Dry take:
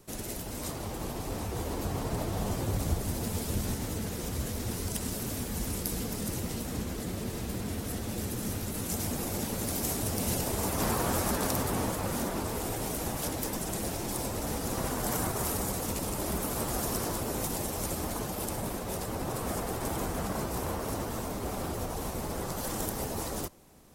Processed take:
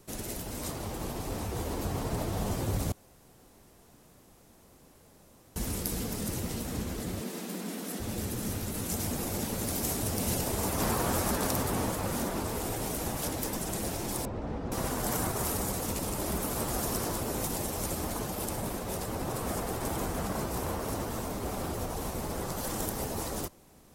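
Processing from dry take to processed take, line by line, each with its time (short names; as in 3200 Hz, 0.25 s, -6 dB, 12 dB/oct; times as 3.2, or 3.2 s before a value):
2.92–5.56 room tone
7.21–8 Chebyshev high-pass 170 Hz, order 5
14.25–14.72 tape spacing loss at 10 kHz 38 dB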